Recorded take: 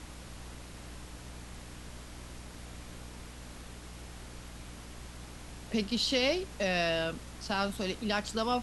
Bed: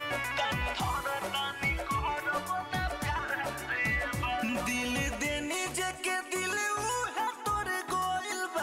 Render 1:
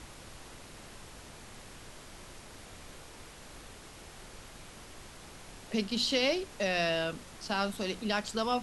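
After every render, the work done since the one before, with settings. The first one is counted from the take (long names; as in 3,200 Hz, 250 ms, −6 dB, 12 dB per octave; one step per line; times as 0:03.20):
mains-hum notches 60/120/180/240/300 Hz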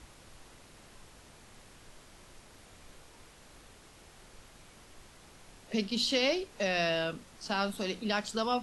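noise reduction from a noise print 6 dB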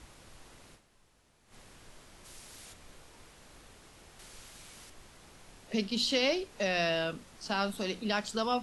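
0:00.74–0:01.54: duck −12.5 dB, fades 0.34 s exponential
0:02.24–0:02.72: high-shelf EQ 3,800 Hz → 2,300 Hz +11 dB
0:04.19–0:04.90: high-shelf EQ 2,200 Hz +8.5 dB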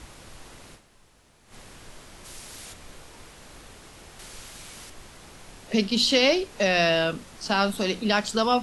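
level +8.5 dB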